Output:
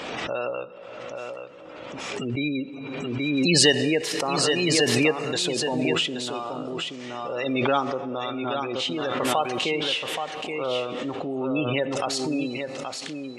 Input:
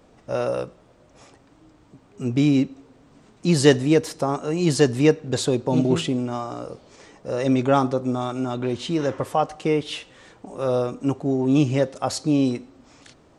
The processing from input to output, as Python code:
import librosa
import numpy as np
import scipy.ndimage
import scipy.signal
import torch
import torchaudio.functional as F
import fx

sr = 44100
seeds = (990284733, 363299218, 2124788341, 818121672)

p1 = fx.spec_gate(x, sr, threshold_db=-30, keep='strong')
p2 = fx.highpass(p1, sr, hz=500.0, slope=6)
p3 = fx.peak_eq(p2, sr, hz=2800.0, db=10.5, octaves=1.3)
p4 = p3 + fx.echo_single(p3, sr, ms=826, db=-6.5, dry=0)
p5 = fx.rev_plate(p4, sr, seeds[0], rt60_s=3.4, hf_ratio=0.65, predelay_ms=0, drr_db=17.5)
p6 = fx.pre_swell(p5, sr, db_per_s=24.0)
y = p6 * 10.0 ** (-3.5 / 20.0)